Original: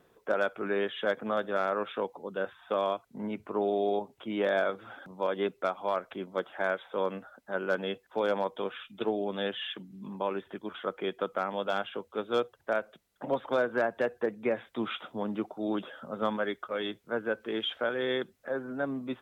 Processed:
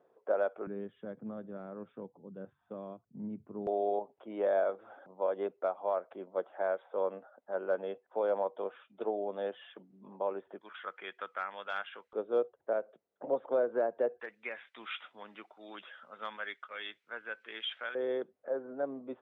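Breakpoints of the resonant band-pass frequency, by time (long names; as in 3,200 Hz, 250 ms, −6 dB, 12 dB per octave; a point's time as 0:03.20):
resonant band-pass, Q 1.6
600 Hz
from 0:00.67 150 Hz
from 0:03.67 610 Hz
from 0:10.61 1,800 Hz
from 0:12.13 500 Hz
from 0:14.20 2,200 Hz
from 0:17.95 540 Hz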